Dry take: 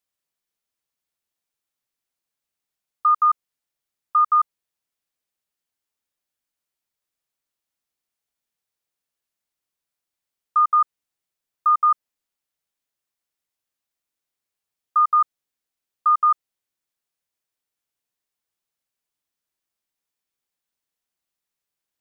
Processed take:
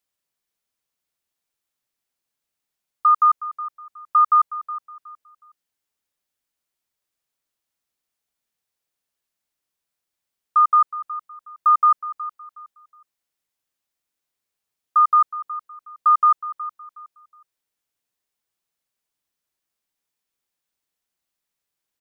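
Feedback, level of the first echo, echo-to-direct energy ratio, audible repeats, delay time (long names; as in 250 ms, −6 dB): 28%, −15.0 dB, −14.5 dB, 2, 367 ms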